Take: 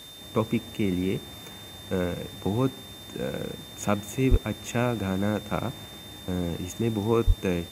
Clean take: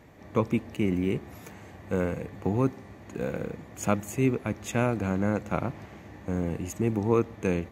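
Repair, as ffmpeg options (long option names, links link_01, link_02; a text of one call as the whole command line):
ffmpeg -i in.wav -filter_complex "[0:a]bandreject=frequency=3600:width=30,asplit=3[link_01][link_02][link_03];[link_01]afade=type=out:start_time=4.3:duration=0.02[link_04];[link_02]highpass=frequency=140:width=0.5412,highpass=frequency=140:width=1.3066,afade=type=in:start_time=4.3:duration=0.02,afade=type=out:start_time=4.42:duration=0.02[link_05];[link_03]afade=type=in:start_time=4.42:duration=0.02[link_06];[link_04][link_05][link_06]amix=inputs=3:normalize=0,asplit=3[link_07][link_08][link_09];[link_07]afade=type=out:start_time=7.26:duration=0.02[link_10];[link_08]highpass=frequency=140:width=0.5412,highpass=frequency=140:width=1.3066,afade=type=in:start_time=7.26:duration=0.02,afade=type=out:start_time=7.38:duration=0.02[link_11];[link_09]afade=type=in:start_time=7.38:duration=0.02[link_12];[link_10][link_11][link_12]amix=inputs=3:normalize=0,afwtdn=0.0032" out.wav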